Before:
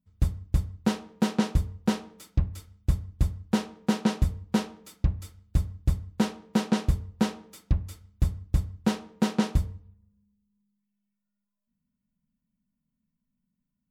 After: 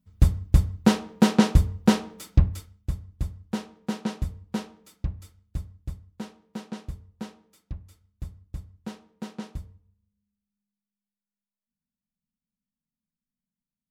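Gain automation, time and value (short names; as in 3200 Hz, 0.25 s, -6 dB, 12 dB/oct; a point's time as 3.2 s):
2.48 s +6.5 dB
2.9 s -5 dB
5.21 s -5 dB
6.1 s -12 dB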